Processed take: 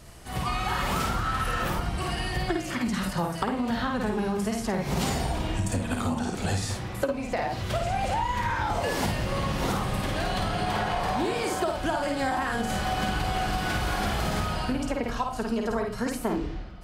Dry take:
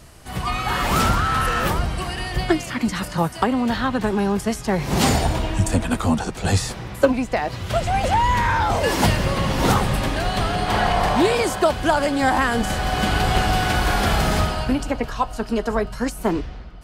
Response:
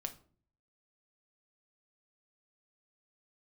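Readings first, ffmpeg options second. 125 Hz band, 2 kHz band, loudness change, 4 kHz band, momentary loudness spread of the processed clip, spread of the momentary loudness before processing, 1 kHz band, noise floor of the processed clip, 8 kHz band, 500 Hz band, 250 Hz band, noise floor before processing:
−7.5 dB, −7.5 dB, −7.5 dB, −7.5 dB, 3 LU, 6 LU, −7.5 dB, −35 dBFS, −7.0 dB, −7.5 dB, −7.0 dB, −35 dBFS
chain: -filter_complex "[0:a]asplit=2[link_01][link_02];[1:a]atrim=start_sample=2205,adelay=52[link_03];[link_02][link_03]afir=irnorm=-1:irlink=0,volume=-0.5dB[link_04];[link_01][link_04]amix=inputs=2:normalize=0,acompressor=threshold=-20dB:ratio=6,volume=-4dB"

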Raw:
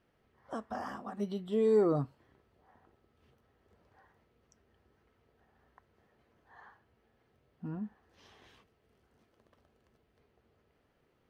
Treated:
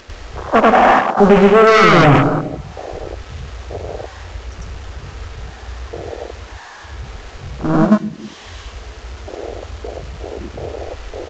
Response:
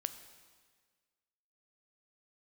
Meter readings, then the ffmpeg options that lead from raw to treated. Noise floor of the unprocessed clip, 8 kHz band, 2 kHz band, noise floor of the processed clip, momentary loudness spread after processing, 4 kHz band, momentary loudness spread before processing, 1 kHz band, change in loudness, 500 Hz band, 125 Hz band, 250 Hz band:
−74 dBFS, can't be measured, +36.0 dB, −37 dBFS, 22 LU, +32.5 dB, 17 LU, +31.5 dB, +22.5 dB, +20.0 dB, +25.0 dB, +22.0 dB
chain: -filter_complex "[0:a]aeval=exprs='val(0)+0.5*0.0224*sgn(val(0))':channel_layout=same,agate=range=-33dB:threshold=-32dB:ratio=16:detection=peak,equalizer=frequency=160:width_type=o:width=1.6:gain=-11,acompressor=mode=upward:threshold=-50dB:ratio=2.5,aresample=16000,aeval=exprs='0.1*sin(PI/2*3.55*val(0)/0.1)':channel_layout=same,aresample=44100,aecho=1:1:75:0.168,asplit=2[link_01][link_02];[1:a]atrim=start_sample=2205,adelay=98[link_03];[link_02][link_03]afir=irnorm=-1:irlink=0,volume=5dB[link_04];[link_01][link_04]amix=inputs=2:normalize=0,afwtdn=0.0224,alimiter=level_in=20.5dB:limit=-1dB:release=50:level=0:latency=1,volume=-1dB"

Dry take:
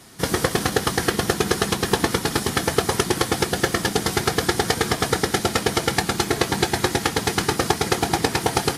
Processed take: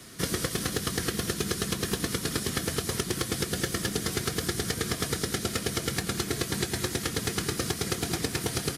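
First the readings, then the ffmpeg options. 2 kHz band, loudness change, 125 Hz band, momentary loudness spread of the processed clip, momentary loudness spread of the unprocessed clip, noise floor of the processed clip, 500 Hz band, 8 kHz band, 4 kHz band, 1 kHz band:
−10.0 dB, −8.0 dB, −5.5 dB, 1 LU, 1 LU, −37 dBFS, −10.5 dB, −5.0 dB, −7.0 dB, −14.5 dB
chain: -filter_complex "[0:a]equalizer=frequency=840:width_type=o:width=0.33:gain=-13.5,acrossover=split=230|2600|6500[link_01][link_02][link_03][link_04];[link_01]acompressor=threshold=-32dB:ratio=4[link_05];[link_02]acompressor=threshold=-32dB:ratio=4[link_06];[link_03]acompressor=threshold=-36dB:ratio=4[link_07];[link_04]acompressor=threshold=-36dB:ratio=4[link_08];[link_05][link_06][link_07][link_08]amix=inputs=4:normalize=0,aeval=exprs='clip(val(0),-1,0.0944)':channel_layout=same,asplit=2[link_09][link_10];[link_10]adelay=192.4,volume=-16dB,highshelf=frequency=4000:gain=-4.33[link_11];[link_09][link_11]amix=inputs=2:normalize=0"

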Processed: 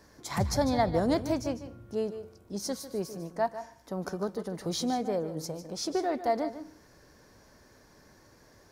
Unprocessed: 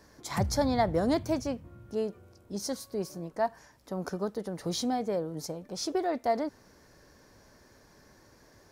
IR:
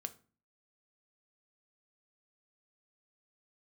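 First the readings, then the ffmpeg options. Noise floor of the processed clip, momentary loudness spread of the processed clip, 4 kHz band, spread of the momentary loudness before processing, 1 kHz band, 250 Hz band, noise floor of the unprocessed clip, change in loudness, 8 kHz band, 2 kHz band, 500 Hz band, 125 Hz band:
−59 dBFS, 12 LU, +0.5 dB, 11 LU, +0.5 dB, +0.5 dB, −59 dBFS, +0.5 dB, +0.5 dB, 0.0 dB, +0.5 dB, +0.5 dB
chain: -filter_complex "[0:a]asplit=2[link_01][link_02];[1:a]atrim=start_sample=2205,asetrate=29547,aresample=44100,adelay=149[link_03];[link_02][link_03]afir=irnorm=-1:irlink=0,volume=-11dB[link_04];[link_01][link_04]amix=inputs=2:normalize=0"

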